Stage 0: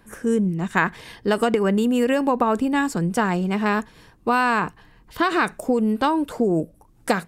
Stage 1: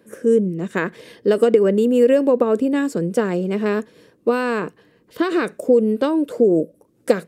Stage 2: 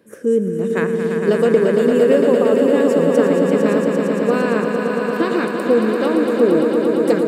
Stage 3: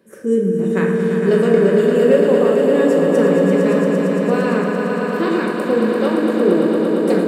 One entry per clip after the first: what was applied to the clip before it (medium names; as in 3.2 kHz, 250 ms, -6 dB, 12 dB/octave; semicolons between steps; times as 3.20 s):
Bessel high-pass 260 Hz, order 2; resonant low shelf 650 Hz +7 dB, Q 3; trim -3 dB
echo with a slow build-up 114 ms, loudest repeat 5, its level -7 dB; trim -1 dB
simulated room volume 370 m³, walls mixed, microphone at 1.1 m; trim -2.5 dB